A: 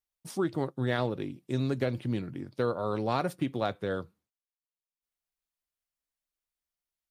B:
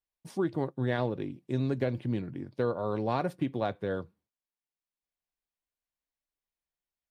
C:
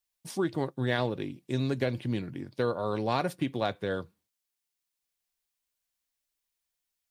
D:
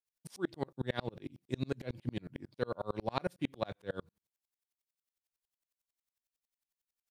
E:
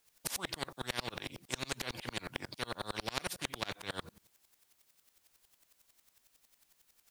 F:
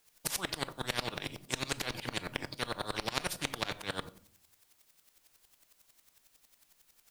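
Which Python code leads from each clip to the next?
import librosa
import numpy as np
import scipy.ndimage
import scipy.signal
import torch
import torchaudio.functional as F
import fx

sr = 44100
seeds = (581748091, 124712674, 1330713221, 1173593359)

y1 = fx.high_shelf(x, sr, hz=3800.0, db=-10.5)
y1 = fx.notch(y1, sr, hz=1300.0, q=8.6)
y2 = fx.high_shelf(y1, sr, hz=2100.0, db=11.0)
y3 = fx.tremolo_decay(y2, sr, direction='swelling', hz=11.0, depth_db=37)
y3 = y3 * 10.0 ** (1.0 / 20.0)
y4 = fx.spectral_comp(y3, sr, ratio=4.0)
y4 = y4 * 10.0 ** (1.0 / 20.0)
y5 = fx.room_shoebox(y4, sr, seeds[0], volume_m3=710.0, walls='furnished', distance_m=0.45)
y5 = y5 * 10.0 ** (3.0 / 20.0)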